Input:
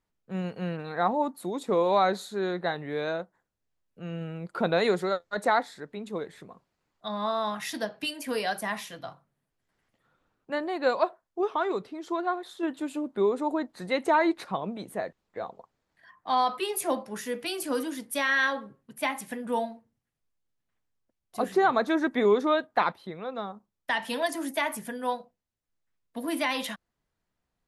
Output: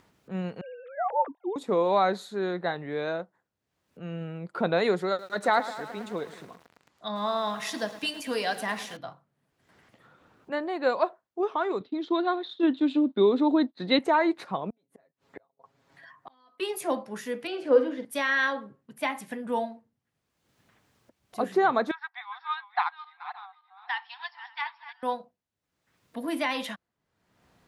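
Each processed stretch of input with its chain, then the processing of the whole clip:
0:00.61–0:01.56: three sine waves on the formant tracks + low-pass filter 1,200 Hz 6 dB per octave
0:05.08–0:08.97: low-pass filter 10,000 Hz + high-shelf EQ 3,800 Hz +7.5 dB + feedback echo at a low word length 108 ms, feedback 80%, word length 7 bits, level −14 dB
0:11.80–0:13.99: downward expander −43 dBFS + low-pass with resonance 3,800 Hz, resonance Q 5.2 + parametric band 270 Hz +10.5 dB 0.76 octaves
0:14.70–0:16.60: comb filter 7.3 ms, depth 85% + gate with flip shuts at −30 dBFS, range −37 dB
0:17.47–0:18.05: low-pass filter 2,800 Hz + parametric band 510 Hz +14.5 dB 0.27 octaves + flutter between parallel walls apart 8.7 metres, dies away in 0.33 s
0:21.91–0:25.03: feedback delay that plays each chunk backwards 284 ms, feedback 42%, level −9 dB + linear-phase brick-wall band-pass 710–5,600 Hz + expander for the loud parts, over −45 dBFS
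whole clip: high-pass filter 85 Hz; upward compression, threshold −45 dBFS; high-shelf EQ 6,500 Hz −8.5 dB

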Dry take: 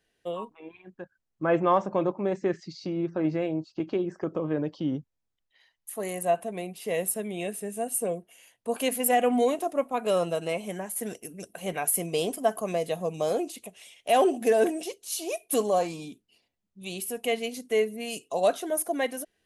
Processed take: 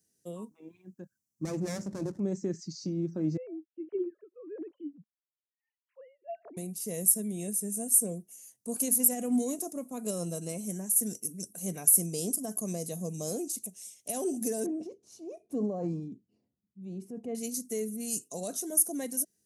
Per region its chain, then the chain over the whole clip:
0:01.45–0:02.20: lower of the sound and its delayed copy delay 0.4 ms + low-pass filter 11,000 Hz
0:03.37–0:06.57: three sine waves on the formant tracks + tremolo along a rectified sine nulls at 1.6 Hz
0:14.66–0:17.35: low-pass filter 1,100 Hz + transient designer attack −2 dB, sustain +6 dB
whole clip: high-pass filter 120 Hz; brickwall limiter −18 dBFS; drawn EQ curve 210 Hz 0 dB, 760 Hz −18 dB, 3,200 Hz −19 dB, 5,900 Hz +6 dB; level +2.5 dB

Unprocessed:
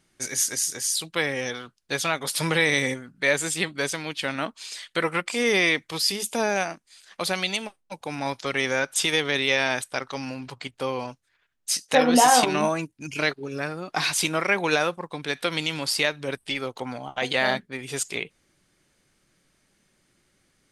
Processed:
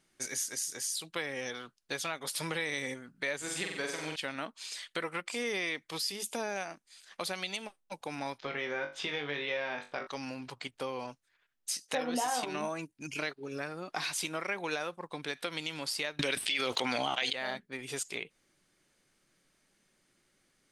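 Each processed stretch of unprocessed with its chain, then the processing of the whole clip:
0:03.37–0:04.16: high-shelf EQ 9,800 Hz −9.5 dB + flutter between parallel walls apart 7.8 metres, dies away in 0.69 s
0:08.38–0:10.07: high-frequency loss of the air 240 metres + flutter between parallel walls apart 3.5 metres, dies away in 0.25 s
0:16.19–0:17.33: meter weighting curve D + envelope flattener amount 100%
whole clip: parametric band 66 Hz −8 dB 2.3 octaves; downward compressor 2.5 to 1, threshold −30 dBFS; level −4.5 dB

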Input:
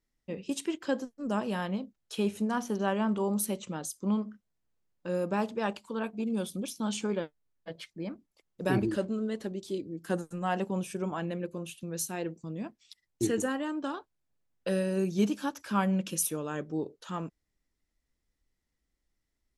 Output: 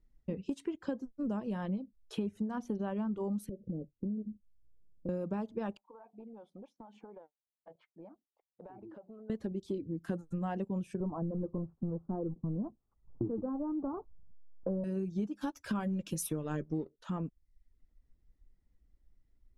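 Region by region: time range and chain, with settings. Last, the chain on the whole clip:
0:03.49–0:05.09: Butterworth low-pass 560 Hz 48 dB per octave + downward compressor 3 to 1, threshold −40 dBFS
0:05.77–0:09.30: resonant band-pass 810 Hz, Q 3.4 + downward compressor 8 to 1, threshold −50 dBFS
0:11.00–0:14.84: mu-law and A-law mismatch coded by mu + Butterworth low-pass 1,200 Hz 48 dB per octave
0:15.41–0:16.94: high-shelf EQ 3,200 Hz +8.5 dB + leveller curve on the samples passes 1 + double-tracking delay 13 ms −11.5 dB
whole clip: reverb reduction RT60 0.5 s; spectral tilt −3.5 dB per octave; downward compressor 6 to 1, threshold −33 dBFS

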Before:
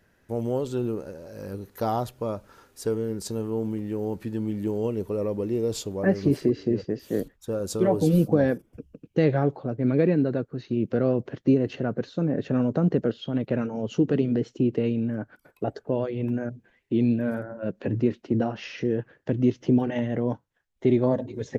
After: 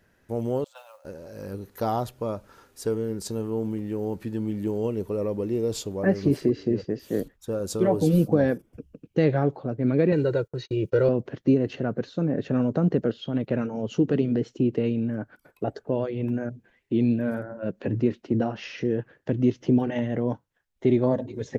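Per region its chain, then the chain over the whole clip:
0:00.64–0:01.05: noise gate −28 dBFS, range −13 dB + Chebyshev high-pass filter 530 Hz, order 10 + noise that follows the level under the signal 21 dB
0:10.12–0:11.09: high-shelf EQ 3,700 Hz +9.5 dB + comb filter 2.1 ms, depth 90% + noise gate −41 dBFS, range −37 dB
whole clip: no processing

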